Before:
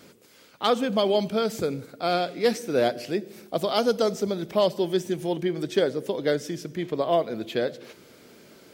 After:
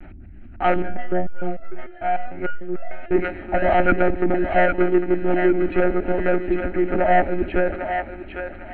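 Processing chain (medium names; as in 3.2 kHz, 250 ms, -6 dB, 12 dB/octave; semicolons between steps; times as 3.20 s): treble shelf 2.3 kHz -9 dB; hum notches 60/120/180/240 Hz; waveshaping leveller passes 3; hum 50 Hz, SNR 20 dB; monotone LPC vocoder at 8 kHz 180 Hz; static phaser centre 710 Hz, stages 8; thinning echo 802 ms, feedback 36%, high-pass 860 Hz, level -4 dB; 0.82–3.11 s: resonator arpeggio 6.7 Hz 65–670 Hz; trim +3.5 dB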